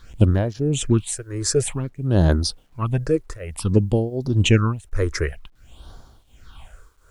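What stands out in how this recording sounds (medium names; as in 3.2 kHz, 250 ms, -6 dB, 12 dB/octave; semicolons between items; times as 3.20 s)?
tremolo triangle 1.4 Hz, depth 95%; phasing stages 6, 0.54 Hz, lowest notch 190–2600 Hz; a quantiser's noise floor 12-bit, dither none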